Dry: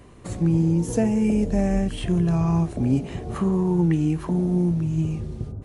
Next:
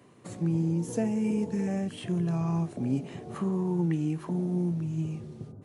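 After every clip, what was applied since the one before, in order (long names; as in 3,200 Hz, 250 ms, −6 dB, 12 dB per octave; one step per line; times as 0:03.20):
healed spectral selection 0:01.25–0:01.65, 440–1,200 Hz before
high-pass filter 120 Hz 24 dB per octave
level −7 dB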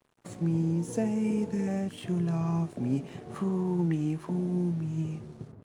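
dead-zone distortion −53 dBFS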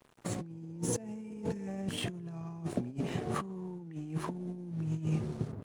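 compressor whose output falls as the input rises −35 dBFS, ratio −0.5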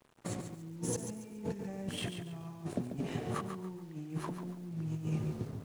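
feedback echo at a low word length 141 ms, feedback 35%, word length 9 bits, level −7.5 dB
level −2.5 dB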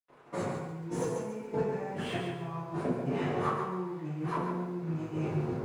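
mid-hump overdrive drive 16 dB, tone 1,300 Hz, clips at −22.5 dBFS
convolution reverb RT60 0.70 s, pre-delay 77 ms
level +4 dB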